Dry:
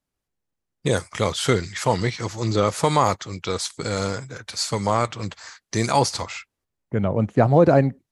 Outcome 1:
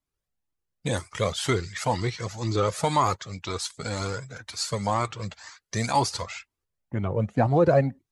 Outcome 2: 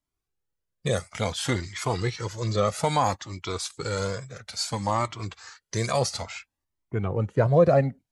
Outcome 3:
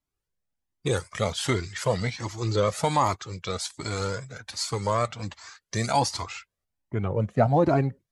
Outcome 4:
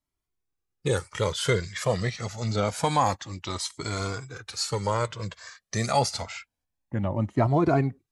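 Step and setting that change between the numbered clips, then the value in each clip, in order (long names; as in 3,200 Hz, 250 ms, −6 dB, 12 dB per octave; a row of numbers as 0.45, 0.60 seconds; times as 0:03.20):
flanger whose copies keep moving one way, speed: 2, 0.59, 1.3, 0.27 Hertz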